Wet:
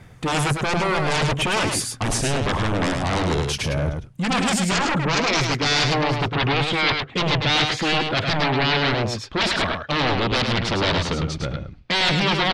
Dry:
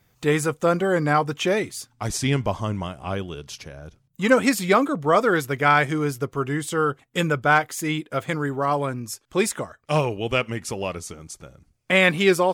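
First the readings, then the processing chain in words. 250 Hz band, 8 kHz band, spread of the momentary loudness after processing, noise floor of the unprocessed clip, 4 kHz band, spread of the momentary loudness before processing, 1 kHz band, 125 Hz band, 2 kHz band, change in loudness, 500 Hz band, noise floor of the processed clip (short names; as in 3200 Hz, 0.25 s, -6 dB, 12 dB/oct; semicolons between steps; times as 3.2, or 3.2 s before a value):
+0.5 dB, +3.5 dB, 5 LU, -65 dBFS, +10.5 dB, 14 LU, +1.0 dB, +4.0 dB, +1.5 dB, +1.5 dB, -2.5 dB, -43 dBFS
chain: tone controls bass +3 dB, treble -13 dB; reverse; compressor 8:1, threshold -27 dBFS, peak gain reduction 16 dB; reverse; sine folder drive 16 dB, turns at -16 dBFS; low-pass sweep 10000 Hz -> 4000 Hz, 4.11–6.25; echo 0.105 s -5 dB; gain -3 dB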